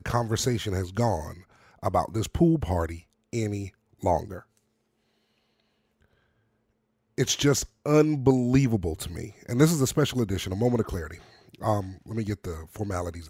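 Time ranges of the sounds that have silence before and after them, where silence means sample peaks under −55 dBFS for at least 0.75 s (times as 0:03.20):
0:05.60–0:06.13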